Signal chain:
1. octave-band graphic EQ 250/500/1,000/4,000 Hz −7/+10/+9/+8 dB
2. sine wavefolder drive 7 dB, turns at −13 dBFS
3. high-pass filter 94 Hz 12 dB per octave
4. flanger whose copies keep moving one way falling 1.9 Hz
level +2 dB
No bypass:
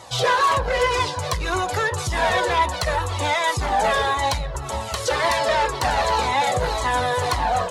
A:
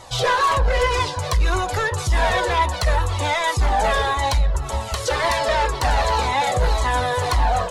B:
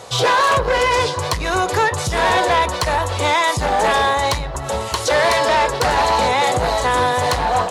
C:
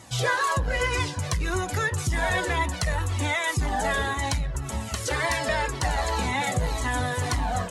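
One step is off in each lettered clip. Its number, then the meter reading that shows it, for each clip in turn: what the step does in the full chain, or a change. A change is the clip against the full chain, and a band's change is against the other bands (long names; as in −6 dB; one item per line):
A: 3, 125 Hz band +5.5 dB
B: 4, change in integrated loudness +4.5 LU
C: 1, change in momentary loudness spread −1 LU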